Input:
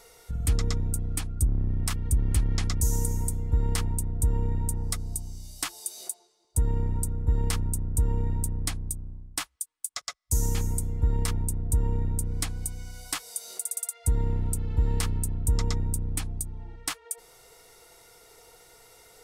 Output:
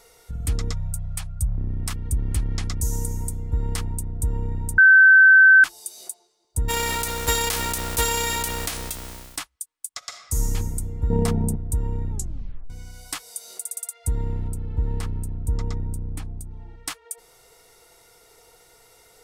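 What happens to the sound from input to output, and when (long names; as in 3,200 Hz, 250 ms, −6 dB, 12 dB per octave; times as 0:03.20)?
0:00.72–0:01.57: time-frequency box erased 210–480 Hz
0:04.78–0:05.64: beep over 1,540 Hz −8 dBFS
0:06.68–0:09.36: spectral envelope flattened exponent 0.3
0:09.98–0:10.54: thrown reverb, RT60 1.4 s, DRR 3 dB
0:11.10–0:11.56: hollow resonant body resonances 200/440/690 Hz, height 15 dB, ringing for 25 ms
0:12.11: tape stop 0.59 s
0:14.48–0:16.51: high-shelf EQ 2,100 Hz −10 dB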